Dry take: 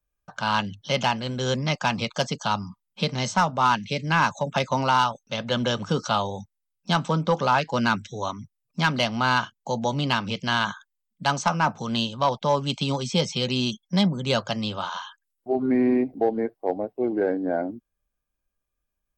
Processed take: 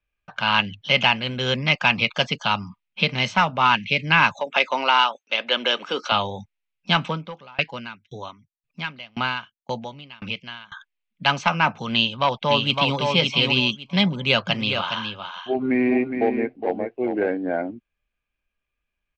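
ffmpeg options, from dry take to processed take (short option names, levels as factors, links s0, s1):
-filter_complex "[0:a]asettb=1/sr,asplit=3[s0][s1][s2];[s0]atrim=end=4.404[s3];[s1]atrim=start=4.4:end=6.12,asetpts=PTS-STARTPTS,afade=t=in:d=0.004:c=qsin,afade=t=out:st=1.716:d=0.004:c=qsin,highpass=f=300:w=0.5412,highpass=f=300:w=1.3066[s4];[s2]atrim=start=6.116[s5];[s3][s4]acrossfade=d=0.004:c1=hsin:c2=qsin[s6];[s6][s5]acrossfade=d=0.004:c1=qsin:c2=hsin,asettb=1/sr,asplit=3[s7][s8][s9];[s7]atrim=end=7.064[s10];[s8]atrim=start=7.06:end=10.72,asetpts=PTS-STARTPTS,afade=t=in:d=0.004:c=qsin,afade=t=out:st=3.656:d=0.004:c=qsin,aeval=exprs='val(0)*pow(10,-31*if(lt(mod(1.9*n/s,1),2*abs(1.9)/1000),1-mod(1.9*n/s,1)/(2*abs(1.9)/1000),(mod(1.9*n/s,1)-2*abs(1.9)/1000)/(1-2*abs(1.9)/1000))/20)':c=same[s11];[s9]atrim=start=10.716[s12];[s10][s11]acrossfade=d=0.004:c1=hsin:c2=qsin[s13];[s13][s12]acrossfade=d=0.004:c1=qsin:c2=hsin,asplit=2[s14][s15];[s15]afade=t=in:st=11.94:d=0.01,afade=t=out:st=13.03:d=0.01,aecho=0:1:560|1120|1680:0.668344|0.133669|0.0267338[s16];[s14][s16]amix=inputs=2:normalize=0,asplit=3[s17][s18][s19];[s17]afade=t=out:st=14.47:d=0.02[s20];[s18]aecho=1:1:414:0.447,afade=t=in:st=14.47:d=0.02,afade=t=out:st=17.3:d=0.02[s21];[s19]afade=t=in:st=17.3:d=0.02[s22];[s20][s21][s22]amix=inputs=3:normalize=0,lowpass=4000,equalizer=f=2500:t=o:w=0.96:g=14"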